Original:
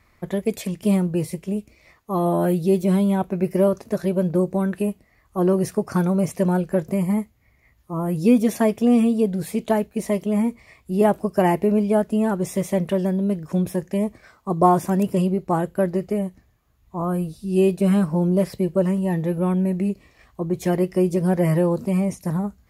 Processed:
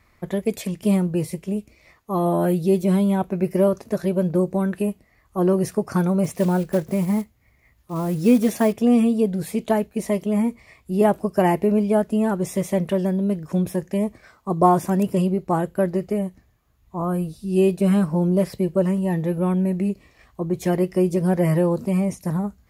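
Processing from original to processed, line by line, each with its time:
6.24–8.74 s: block-companded coder 5-bit

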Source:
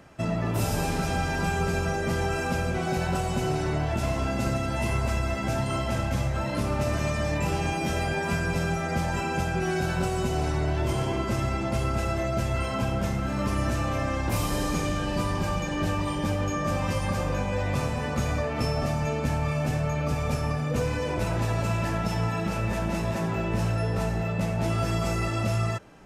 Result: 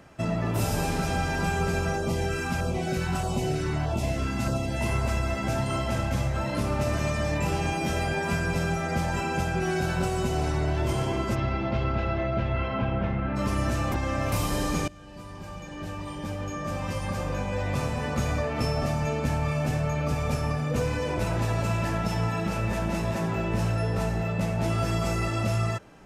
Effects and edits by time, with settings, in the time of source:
1.98–4.81 s: LFO notch saw down 1.6 Hz 390–2400 Hz
11.34–13.35 s: low-pass 4.5 kHz -> 2.7 kHz 24 dB/octave
13.92–14.32 s: reverse
14.88–18.13 s: fade in, from -22 dB

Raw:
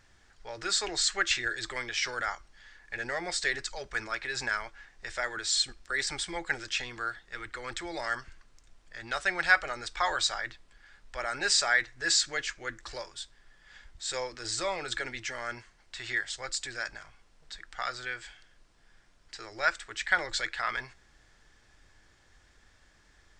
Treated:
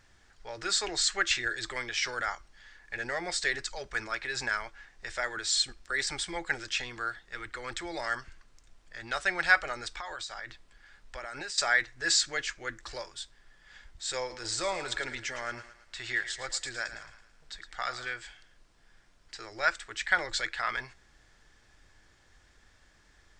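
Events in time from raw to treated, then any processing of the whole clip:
9.94–11.58 s: compression 10:1, threshold -35 dBFS
14.19–18.13 s: thinning echo 110 ms, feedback 47%, level -12 dB

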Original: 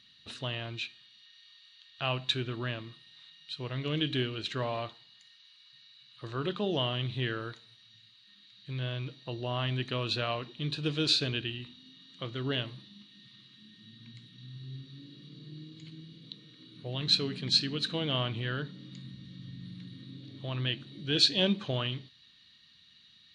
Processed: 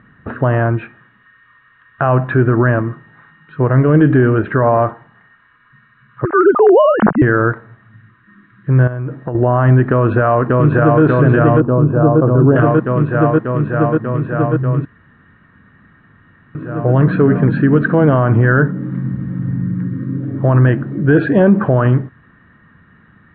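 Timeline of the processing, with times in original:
6.25–7.22 s: formants replaced by sine waves
8.87–9.35 s: compression 16:1, threshold -42 dBFS
9.90–11.02 s: echo throw 590 ms, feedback 80%, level -1.5 dB
11.60–12.56 s: boxcar filter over 22 samples
14.85–16.55 s: room tone
18.82–19.62 s: zero-crossing glitches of -43 dBFS
whole clip: elliptic low-pass 1.6 kHz, stop band 70 dB; loudness maximiser +28 dB; trim -1.5 dB

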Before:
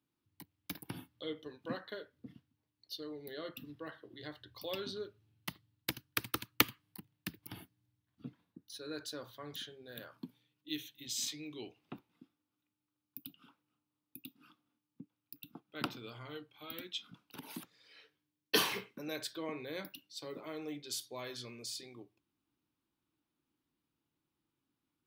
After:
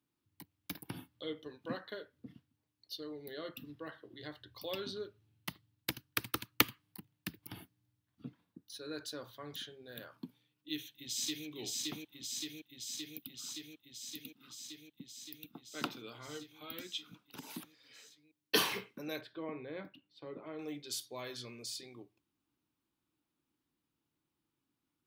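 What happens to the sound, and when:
10.71–11.47 s: echo throw 570 ms, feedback 80%, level -1.5 dB
15.69–16.28 s: high-pass 160 Hz
19.21–20.59 s: distance through air 450 m

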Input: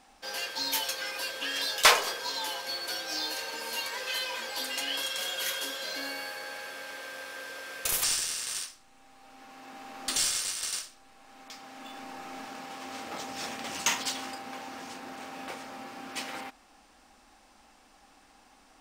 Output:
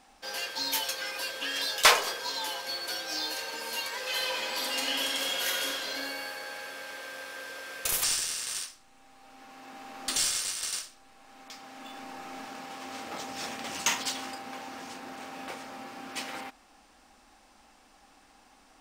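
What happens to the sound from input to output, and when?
3.99–5.70 s: reverb throw, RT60 2.3 s, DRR -1 dB

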